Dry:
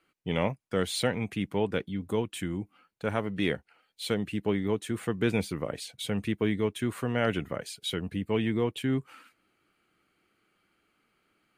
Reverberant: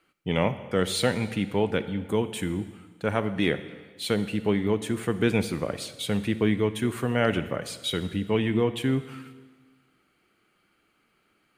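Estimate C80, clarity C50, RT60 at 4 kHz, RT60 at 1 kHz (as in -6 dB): 14.0 dB, 13.0 dB, 1.4 s, 1.5 s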